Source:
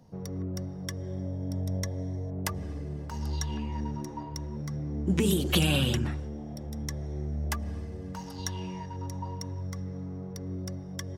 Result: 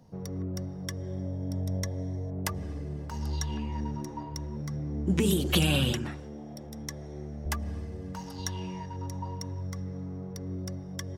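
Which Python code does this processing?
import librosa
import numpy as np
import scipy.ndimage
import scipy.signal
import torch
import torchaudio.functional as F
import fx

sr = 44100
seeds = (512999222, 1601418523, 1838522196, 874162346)

y = fx.highpass(x, sr, hz=210.0, slope=6, at=(5.92, 7.46))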